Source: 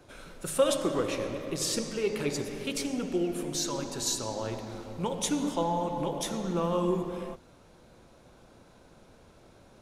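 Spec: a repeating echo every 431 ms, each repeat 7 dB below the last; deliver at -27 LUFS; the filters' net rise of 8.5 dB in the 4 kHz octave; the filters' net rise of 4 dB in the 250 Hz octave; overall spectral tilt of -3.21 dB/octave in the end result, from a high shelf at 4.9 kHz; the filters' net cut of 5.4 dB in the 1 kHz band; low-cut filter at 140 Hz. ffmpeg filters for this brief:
-af "highpass=140,equalizer=f=250:t=o:g=6.5,equalizer=f=1000:t=o:g=-7.5,equalizer=f=4000:t=o:g=9,highshelf=f=4900:g=3.5,aecho=1:1:431|862|1293|1724|2155:0.447|0.201|0.0905|0.0407|0.0183"

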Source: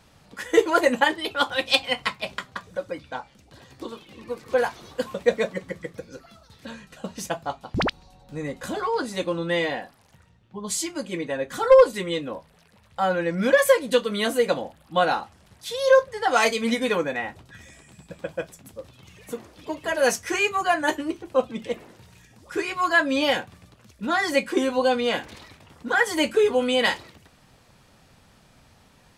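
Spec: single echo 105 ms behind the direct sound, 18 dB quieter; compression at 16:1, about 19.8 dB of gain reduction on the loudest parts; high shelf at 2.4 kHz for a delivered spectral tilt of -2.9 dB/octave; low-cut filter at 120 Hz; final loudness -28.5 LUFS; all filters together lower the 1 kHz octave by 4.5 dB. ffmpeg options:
-af "highpass=120,equalizer=f=1000:t=o:g=-7.5,highshelf=f=2400:g=6,acompressor=threshold=0.0282:ratio=16,aecho=1:1:105:0.126,volume=2.51"

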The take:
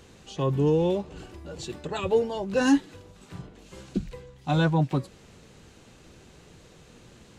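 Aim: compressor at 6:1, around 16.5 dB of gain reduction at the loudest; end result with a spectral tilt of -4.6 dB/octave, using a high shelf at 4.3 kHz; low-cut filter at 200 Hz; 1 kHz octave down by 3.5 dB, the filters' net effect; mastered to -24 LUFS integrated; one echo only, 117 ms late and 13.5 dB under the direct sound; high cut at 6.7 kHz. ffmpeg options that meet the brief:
-af "highpass=200,lowpass=6700,equalizer=f=1000:t=o:g=-5,highshelf=f=4300:g=8,acompressor=threshold=0.0158:ratio=6,aecho=1:1:117:0.211,volume=7.08"

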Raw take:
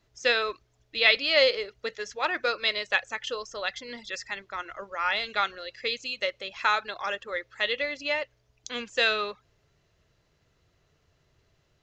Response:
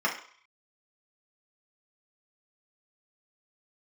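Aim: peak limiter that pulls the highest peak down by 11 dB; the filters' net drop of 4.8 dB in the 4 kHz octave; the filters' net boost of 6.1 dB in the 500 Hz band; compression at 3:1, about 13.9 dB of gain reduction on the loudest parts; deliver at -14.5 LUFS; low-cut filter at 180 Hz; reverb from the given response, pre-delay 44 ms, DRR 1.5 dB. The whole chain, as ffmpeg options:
-filter_complex "[0:a]highpass=180,equalizer=f=500:t=o:g=7,equalizer=f=4000:t=o:g=-6,acompressor=threshold=0.0251:ratio=3,alimiter=level_in=1.5:limit=0.0631:level=0:latency=1,volume=0.668,asplit=2[s0][s1];[1:a]atrim=start_sample=2205,adelay=44[s2];[s1][s2]afir=irnorm=-1:irlink=0,volume=0.211[s3];[s0][s3]amix=inputs=2:normalize=0,volume=13.3"

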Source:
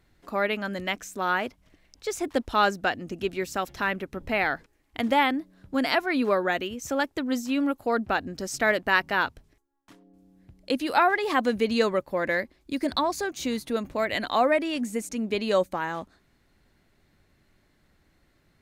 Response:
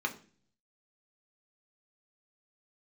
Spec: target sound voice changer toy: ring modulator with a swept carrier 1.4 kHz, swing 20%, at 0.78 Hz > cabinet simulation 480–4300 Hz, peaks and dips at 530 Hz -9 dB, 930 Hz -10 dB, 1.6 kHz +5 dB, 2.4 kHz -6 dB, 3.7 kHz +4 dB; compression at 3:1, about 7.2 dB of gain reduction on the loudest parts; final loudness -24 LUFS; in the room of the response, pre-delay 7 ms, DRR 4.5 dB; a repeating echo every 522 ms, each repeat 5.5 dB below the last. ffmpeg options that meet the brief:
-filter_complex "[0:a]acompressor=threshold=0.0501:ratio=3,aecho=1:1:522|1044|1566|2088|2610|3132|3654:0.531|0.281|0.149|0.079|0.0419|0.0222|0.0118,asplit=2[s0][s1];[1:a]atrim=start_sample=2205,adelay=7[s2];[s1][s2]afir=irnorm=-1:irlink=0,volume=0.299[s3];[s0][s3]amix=inputs=2:normalize=0,aeval=exprs='val(0)*sin(2*PI*1400*n/s+1400*0.2/0.78*sin(2*PI*0.78*n/s))':c=same,highpass=480,equalizer=f=530:t=q:w=4:g=-9,equalizer=f=930:t=q:w=4:g=-10,equalizer=f=1600:t=q:w=4:g=5,equalizer=f=2400:t=q:w=4:g=-6,equalizer=f=3700:t=q:w=4:g=4,lowpass=f=4300:w=0.5412,lowpass=f=4300:w=1.3066,volume=2.24"

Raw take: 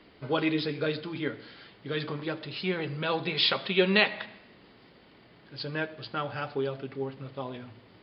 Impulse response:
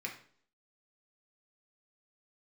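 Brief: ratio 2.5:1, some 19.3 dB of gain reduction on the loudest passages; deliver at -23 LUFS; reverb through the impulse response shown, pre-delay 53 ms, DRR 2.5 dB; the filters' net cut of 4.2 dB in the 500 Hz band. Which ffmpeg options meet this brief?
-filter_complex "[0:a]equalizer=f=500:t=o:g=-5.5,acompressor=threshold=0.00316:ratio=2.5,asplit=2[s0][s1];[1:a]atrim=start_sample=2205,adelay=53[s2];[s1][s2]afir=irnorm=-1:irlink=0,volume=0.631[s3];[s0][s3]amix=inputs=2:normalize=0,volume=13.3"

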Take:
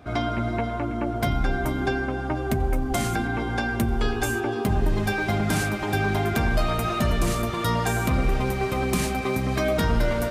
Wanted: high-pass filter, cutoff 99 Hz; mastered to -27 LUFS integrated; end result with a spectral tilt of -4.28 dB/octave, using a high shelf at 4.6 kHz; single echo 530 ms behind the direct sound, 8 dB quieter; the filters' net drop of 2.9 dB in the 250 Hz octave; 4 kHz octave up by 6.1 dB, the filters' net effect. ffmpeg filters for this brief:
-af "highpass=99,equalizer=f=250:t=o:g=-3.5,equalizer=f=4000:t=o:g=4.5,highshelf=f=4600:g=6.5,aecho=1:1:530:0.398,volume=0.794"

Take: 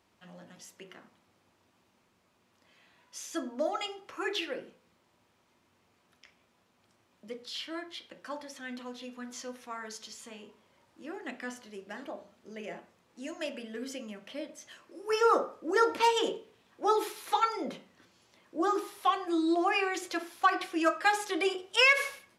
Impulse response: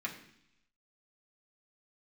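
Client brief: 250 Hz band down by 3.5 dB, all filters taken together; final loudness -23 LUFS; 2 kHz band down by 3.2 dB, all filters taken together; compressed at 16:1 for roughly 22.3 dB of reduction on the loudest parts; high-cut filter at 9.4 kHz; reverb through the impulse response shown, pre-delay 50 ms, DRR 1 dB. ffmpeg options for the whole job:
-filter_complex "[0:a]lowpass=9400,equalizer=f=250:t=o:g=-5.5,equalizer=f=2000:t=o:g=-4,acompressor=threshold=0.00631:ratio=16,asplit=2[s0][s1];[1:a]atrim=start_sample=2205,adelay=50[s2];[s1][s2]afir=irnorm=-1:irlink=0,volume=0.668[s3];[s0][s3]amix=inputs=2:normalize=0,volume=15.8"

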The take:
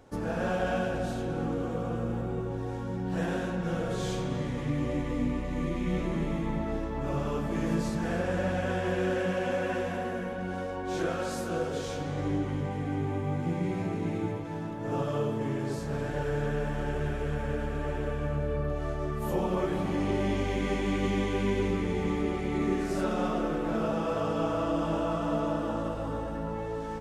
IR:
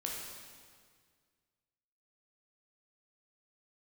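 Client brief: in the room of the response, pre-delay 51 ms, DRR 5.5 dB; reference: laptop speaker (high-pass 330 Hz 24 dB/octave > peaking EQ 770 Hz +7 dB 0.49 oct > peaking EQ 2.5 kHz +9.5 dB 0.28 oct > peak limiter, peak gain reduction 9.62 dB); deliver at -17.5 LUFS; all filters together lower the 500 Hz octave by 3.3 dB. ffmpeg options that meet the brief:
-filter_complex "[0:a]equalizer=f=500:t=o:g=-5.5,asplit=2[s0][s1];[1:a]atrim=start_sample=2205,adelay=51[s2];[s1][s2]afir=irnorm=-1:irlink=0,volume=0.447[s3];[s0][s3]amix=inputs=2:normalize=0,highpass=f=330:w=0.5412,highpass=f=330:w=1.3066,equalizer=f=770:t=o:w=0.49:g=7,equalizer=f=2500:t=o:w=0.28:g=9.5,volume=8.91,alimiter=limit=0.355:level=0:latency=1"

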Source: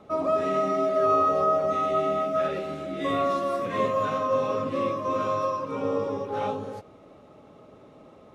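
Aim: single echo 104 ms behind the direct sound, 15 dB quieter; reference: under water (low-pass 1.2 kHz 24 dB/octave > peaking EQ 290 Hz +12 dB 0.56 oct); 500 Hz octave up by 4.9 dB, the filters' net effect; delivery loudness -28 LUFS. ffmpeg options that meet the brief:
-af "lowpass=f=1200:w=0.5412,lowpass=f=1200:w=1.3066,equalizer=f=290:t=o:w=0.56:g=12,equalizer=f=500:t=o:g=4.5,aecho=1:1:104:0.178,volume=0.473"

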